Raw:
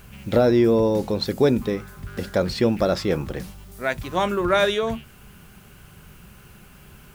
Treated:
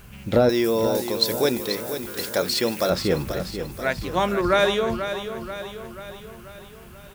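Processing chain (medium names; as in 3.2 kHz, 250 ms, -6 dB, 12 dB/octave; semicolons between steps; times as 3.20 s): 0.49–2.90 s: RIAA curve recording; feedback delay 486 ms, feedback 55%, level -9.5 dB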